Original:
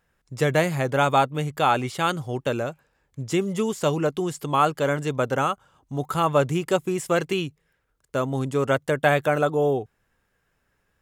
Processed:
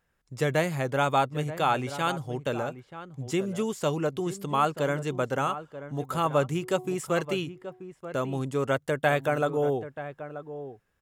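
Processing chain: 6.45–6.89 de-hum 122.8 Hz, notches 9; outdoor echo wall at 160 m, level -12 dB; gain -4.5 dB

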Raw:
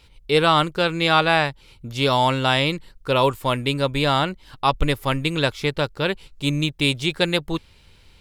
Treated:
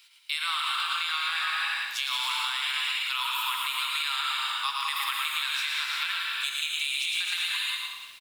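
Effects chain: steep high-pass 1100 Hz 48 dB/oct; high shelf 12000 Hz +11 dB; on a send: feedback echo 0.11 s, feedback 24%, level -5 dB; on the sum: non-linear reverb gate 0.41 s flat, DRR 0 dB; limiter -12 dBFS, peak gain reduction 7.5 dB; bell 1400 Hz -4.5 dB 0.86 oct; compressor 5:1, threshold -26 dBFS, peak gain reduction 6 dB; lo-fi delay 0.176 s, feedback 55%, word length 8-bit, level -10.5 dB

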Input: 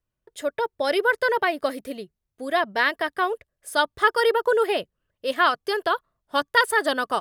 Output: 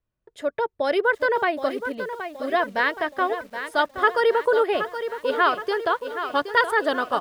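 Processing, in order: LPF 2200 Hz 6 dB/oct; lo-fi delay 0.772 s, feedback 55%, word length 8-bit, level -9.5 dB; gain +1 dB

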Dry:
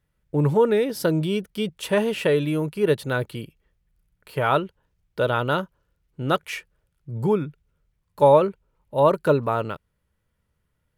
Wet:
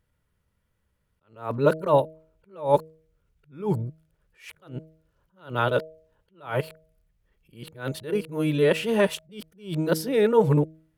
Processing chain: whole clip reversed; de-hum 158.6 Hz, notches 4; attack slew limiter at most 160 dB/s

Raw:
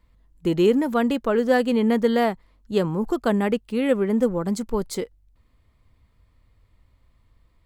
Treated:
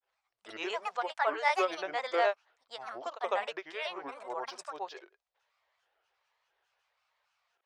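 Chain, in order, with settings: elliptic band-pass 660–6500 Hz, stop band 40 dB; grains 0.145 s, grains 20/s, pitch spread up and down by 7 st

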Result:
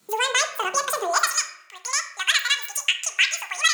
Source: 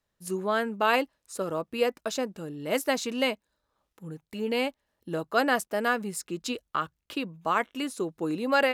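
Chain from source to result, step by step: bell 3000 Hz +9 dB 0.66 oct; in parallel at +0.5 dB: compressor, threshold -33 dBFS, peak gain reduction 15.5 dB; on the sum: requantised 12-bit, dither none; high-pass sweep 72 Hz -> 920 Hz, 2.12–3.01; speed mistake 33 rpm record played at 78 rpm; on a send at -6.5 dB: reverb RT60 0.65 s, pre-delay 3 ms; on the sum: three-band squash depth 40%

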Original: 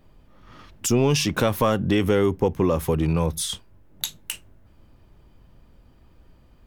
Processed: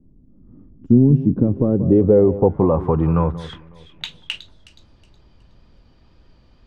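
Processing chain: wow and flutter 25 cents; echo with dull and thin repeats by turns 0.184 s, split 1100 Hz, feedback 53%, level -14 dB; low-pass sweep 260 Hz -> 4800 Hz, 1.3–4.71; dynamic EQ 130 Hz, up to +5 dB, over -33 dBFS, Q 0.75; gain +1 dB

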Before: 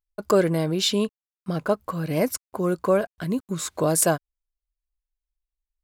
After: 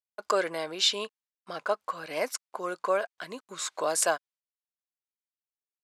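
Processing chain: gate -53 dBFS, range -19 dB; BPF 750–7200 Hz

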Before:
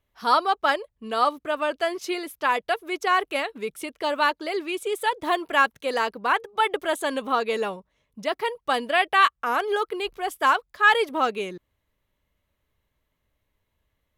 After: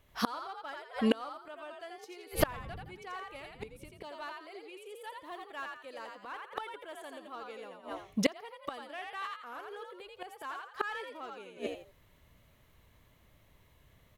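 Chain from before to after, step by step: 2.32–3.9 wind noise 110 Hz -33 dBFS; frequency-shifting echo 84 ms, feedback 32%, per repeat +56 Hz, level -3.5 dB; in parallel at -5.5 dB: hard clip -19 dBFS, distortion -10 dB; on the sum: flipped gate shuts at -18 dBFS, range -31 dB; gain +6 dB

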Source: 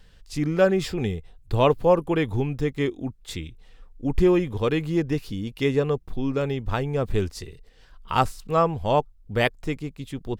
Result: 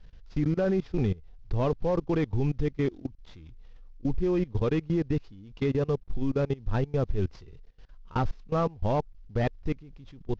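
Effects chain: CVSD 32 kbps; tilt -2 dB/oct; level quantiser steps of 22 dB; gain -2.5 dB

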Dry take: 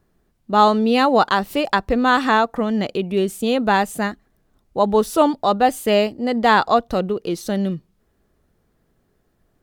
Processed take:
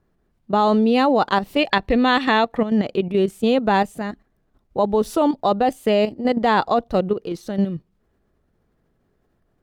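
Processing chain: dynamic EQ 1400 Hz, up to -5 dB, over -30 dBFS, Q 1.3; spectral gain 1.58–2.62, 1700–4500 Hz +7 dB; high shelf 4500 Hz -10 dB; level quantiser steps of 10 dB; gain +4 dB

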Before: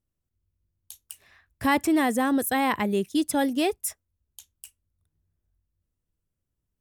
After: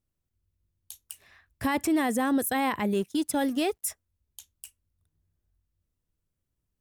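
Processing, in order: 2.93–3.85 G.711 law mismatch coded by A; limiter -18.5 dBFS, peak gain reduction 7 dB

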